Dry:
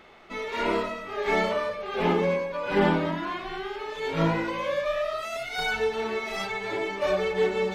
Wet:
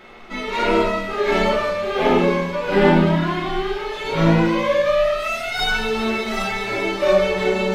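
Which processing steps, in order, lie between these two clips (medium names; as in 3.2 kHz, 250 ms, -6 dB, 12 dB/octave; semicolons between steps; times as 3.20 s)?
in parallel at -12 dB: saturation -27 dBFS, distortion -8 dB; on the sum: feedback echo behind a high-pass 197 ms, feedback 85%, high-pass 4.2 kHz, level -9 dB; simulated room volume 65 m³, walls mixed, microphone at 0.95 m; trim +2.5 dB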